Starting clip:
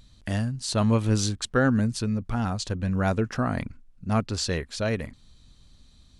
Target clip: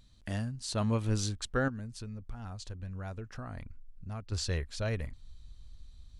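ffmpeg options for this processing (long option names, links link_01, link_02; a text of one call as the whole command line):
ffmpeg -i in.wav -filter_complex "[0:a]asubboost=boost=5.5:cutoff=86,asettb=1/sr,asplit=3[link_01][link_02][link_03];[link_01]atrim=end=1.684[link_04];[link_02]atrim=start=1.68:end=4.32,asetpts=PTS-STARTPTS,afade=type=in:duration=0.004:curve=qsin,afade=type=out:start_time=2.636:duration=0.004:curve=qsin,acompressor=threshold=-35dB:ratio=2.5[link_05];[link_03]atrim=start=4.316[link_06];[link_04][link_05]acrossfade=duration=0.004:curve1=hsin:curve2=qsin[link_07];[link_07][link_06]acrossfade=duration=0.004:curve1=qsin:curve2=hsin,volume=-7.5dB" out.wav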